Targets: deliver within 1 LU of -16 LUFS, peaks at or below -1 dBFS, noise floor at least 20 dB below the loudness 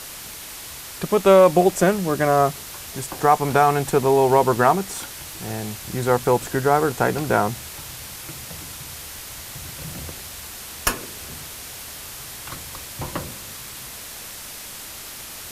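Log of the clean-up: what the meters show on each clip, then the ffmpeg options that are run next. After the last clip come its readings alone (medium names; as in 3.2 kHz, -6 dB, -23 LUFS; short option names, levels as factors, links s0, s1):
noise floor -37 dBFS; noise floor target -40 dBFS; loudness -20.0 LUFS; peak level -3.5 dBFS; loudness target -16.0 LUFS
-> -af "afftdn=nr=6:nf=-37"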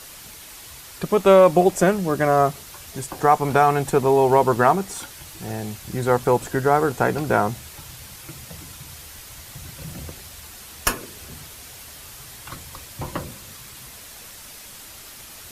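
noise floor -42 dBFS; loudness -19.5 LUFS; peak level -3.5 dBFS; loudness target -16.0 LUFS
-> -af "volume=1.5,alimiter=limit=0.891:level=0:latency=1"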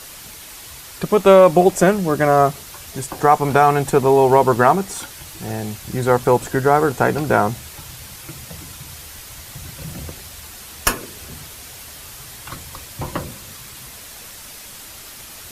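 loudness -16.5 LUFS; peak level -1.0 dBFS; noise floor -38 dBFS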